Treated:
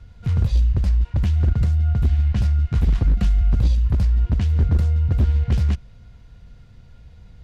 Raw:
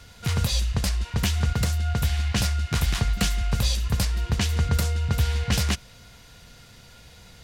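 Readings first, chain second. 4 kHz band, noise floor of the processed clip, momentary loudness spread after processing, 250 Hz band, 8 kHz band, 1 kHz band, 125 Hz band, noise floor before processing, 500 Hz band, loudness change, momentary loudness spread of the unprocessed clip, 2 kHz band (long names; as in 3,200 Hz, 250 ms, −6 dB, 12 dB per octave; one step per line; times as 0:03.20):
−14.0 dB, −46 dBFS, 2 LU, +2.0 dB, below −15 dB, −7.5 dB, +6.0 dB, −49 dBFS, −2.0 dB, +5.0 dB, 2 LU, −10.0 dB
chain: RIAA equalisation playback
wave folding −2.5 dBFS
harmonic generator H 4 −28 dB, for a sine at −2.5 dBFS
level −8 dB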